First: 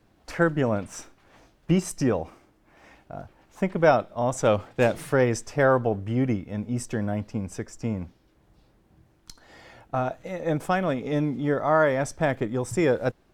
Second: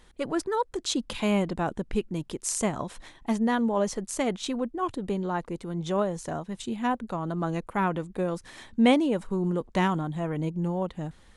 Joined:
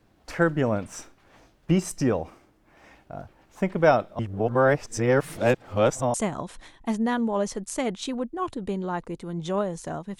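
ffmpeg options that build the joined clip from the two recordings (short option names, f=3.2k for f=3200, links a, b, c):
-filter_complex "[0:a]apad=whole_dur=10.19,atrim=end=10.19,asplit=2[a][b];[a]atrim=end=4.192[c];[b]atrim=start=4.188:end=6.142,asetpts=PTS-STARTPTS,areverse[d];[1:a]atrim=start=2.548:end=6.6[e];[c][d]acrossfade=d=0.004:c1=hsin:c2=hsin[f];[f][e]acrossfade=d=0.004:c1=hsin:c2=hsin"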